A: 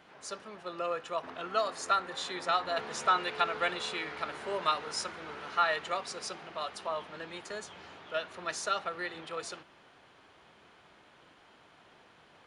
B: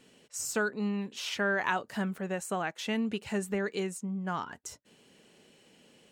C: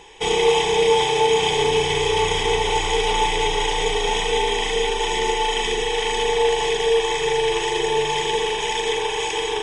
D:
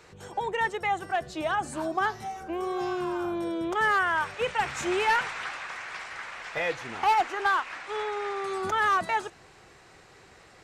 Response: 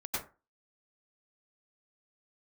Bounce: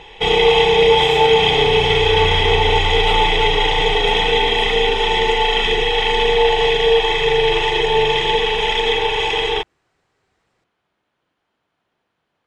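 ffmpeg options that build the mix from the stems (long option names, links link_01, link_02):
-filter_complex "[0:a]volume=-14.5dB[link_01];[1:a]aeval=exprs='val(0)*sin(2*PI*85*n/s)':channel_layout=same,adelay=650,volume=-8dB,asplit=2[link_02][link_03];[link_03]volume=-4.5dB[link_04];[2:a]highshelf=frequency=5000:width_type=q:width=1.5:gain=-12.5,aecho=1:1:1.5:0.32,volume=2.5dB,asplit=2[link_05][link_06];[link_06]volume=-12.5dB[link_07];[3:a]alimiter=level_in=4.5dB:limit=-24dB:level=0:latency=1,volume=-4.5dB,volume=-17dB[link_08];[4:a]atrim=start_sample=2205[link_09];[link_04][link_07]amix=inputs=2:normalize=0[link_10];[link_10][link_09]afir=irnorm=-1:irlink=0[link_11];[link_01][link_02][link_05][link_08][link_11]amix=inputs=5:normalize=0,lowshelf=frequency=350:gain=3.5"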